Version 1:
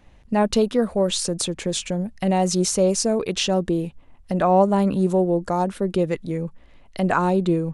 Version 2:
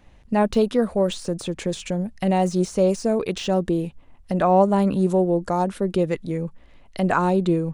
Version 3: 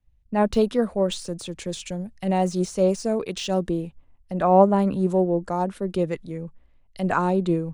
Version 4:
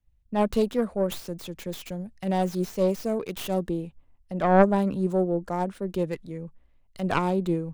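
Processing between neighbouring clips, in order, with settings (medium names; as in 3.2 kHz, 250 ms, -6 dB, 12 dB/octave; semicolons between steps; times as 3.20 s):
de-esser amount 65%
three bands expanded up and down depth 70%; trim -2 dB
tracing distortion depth 0.19 ms; trim -3.5 dB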